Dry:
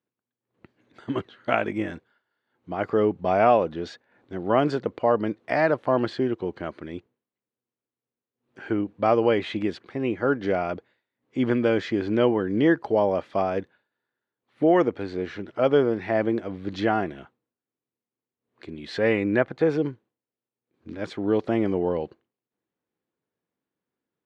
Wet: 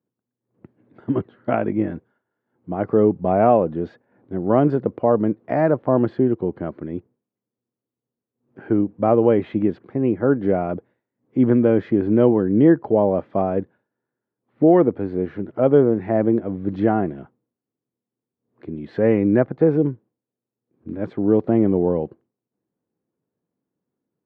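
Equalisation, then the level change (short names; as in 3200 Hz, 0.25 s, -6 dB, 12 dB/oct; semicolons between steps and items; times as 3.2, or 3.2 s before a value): HPF 100 Hz; tone controls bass +4 dB, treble -12 dB; tilt shelf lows +9.5 dB, about 1400 Hz; -3.0 dB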